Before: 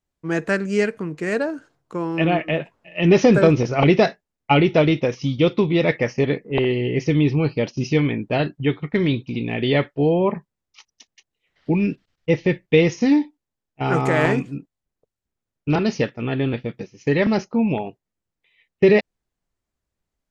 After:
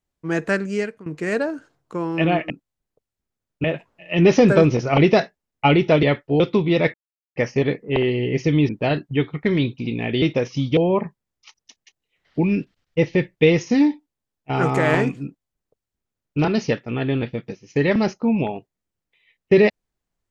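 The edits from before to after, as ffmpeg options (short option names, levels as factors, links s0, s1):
-filter_complex "[0:a]asplit=10[s0][s1][s2][s3][s4][s5][s6][s7][s8][s9];[s0]atrim=end=1.06,asetpts=PTS-STARTPTS,afade=t=out:st=0.57:d=0.49:silence=0.149624[s10];[s1]atrim=start=1.06:end=2.502,asetpts=PTS-STARTPTS,afade=t=in:d=0.004:c=hsin:silence=0.149624[s11];[s2]atrim=start=14.558:end=15.702[s12];[s3]atrim=start=2.498:end=4.892[s13];[s4]atrim=start=9.708:end=10.082[s14];[s5]atrim=start=5.438:end=5.98,asetpts=PTS-STARTPTS,afade=t=out:st=0.538:d=0.004:c=hsin,apad=pad_dur=0.42[s15];[s6]atrim=start=5.98:end=7.312,asetpts=PTS-STARTPTS,afade=t=in:d=0.004:c=hsin[s16];[s7]atrim=start=8.178:end=9.712[s17];[s8]atrim=start=4.888:end=5.442[s18];[s9]atrim=start=10.078[s19];[s10][s11]concat=n=2:v=0:a=1[s20];[s20][s12]acrossfade=d=0.004:c1=hsin:c2=hsin[s21];[s21][s13]acrossfade=d=0.004:c1=hsin:c2=hsin[s22];[s22][s14]acrossfade=d=0.004:c1=hsin:c2=hsin[s23];[s15][s16]concat=n=2:v=0:a=1[s24];[s23][s24]acrossfade=d=0.004:c1=hsin:c2=hsin[s25];[s25][s17]acrossfade=d=0.004:c1=hsin:c2=hsin[s26];[s26][s18]acrossfade=d=0.004:c1=hsin:c2=hsin[s27];[s27][s19]acrossfade=d=0.004:c1=hsin:c2=hsin"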